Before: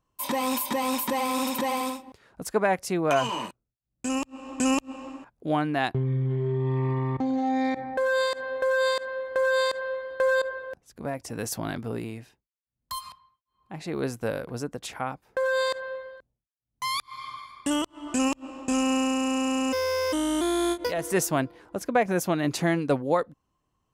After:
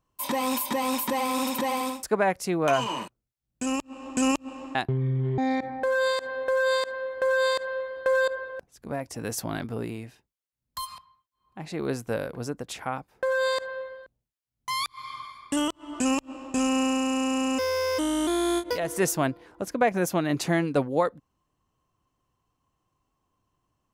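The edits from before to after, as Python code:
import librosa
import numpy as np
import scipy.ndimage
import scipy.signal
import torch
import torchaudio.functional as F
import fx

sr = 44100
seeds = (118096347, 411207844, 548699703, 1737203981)

y = fx.edit(x, sr, fx.cut(start_s=2.03, length_s=0.43),
    fx.cut(start_s=5.18, length_s=0.63),
    fx.cut(start_s=6.44, length_s=1.08), tone=tone)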